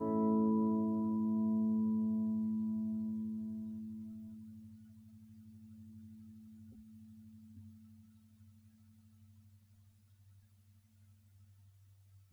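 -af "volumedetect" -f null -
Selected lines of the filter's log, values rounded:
mean_volume: -39.3 dB
max_volume: -23.4 dB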